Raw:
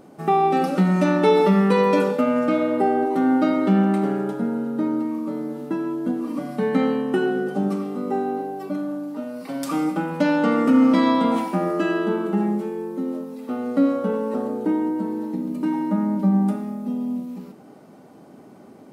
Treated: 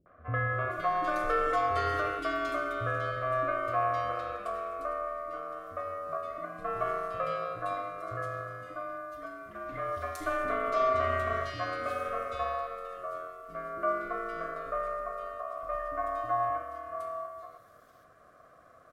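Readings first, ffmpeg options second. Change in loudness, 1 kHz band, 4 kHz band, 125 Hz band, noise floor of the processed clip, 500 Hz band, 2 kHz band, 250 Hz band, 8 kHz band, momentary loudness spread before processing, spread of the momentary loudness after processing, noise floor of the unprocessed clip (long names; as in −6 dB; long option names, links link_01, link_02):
−11.0 dB, −5.0 dB, −10.0 dB, −13.0 dB, −58 dBFS, −10.5 dB, −3.0 dB, −27.5 dB, can't be measured, 12 LU, 11 LU, −46 dBFS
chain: -filter_complex "[0:a]aeval=exprs='val(0)*sin(2*PI*900*n/s)':channel_layout=same,acrossover=split=310|2500[link_01][link_02][link_03];[link_02]adelay=60[link_04];[link_03]adelay=520[link_05];[link_01][link_04][link_05]amix=inputs=3:normalize=0,volume=-8dB"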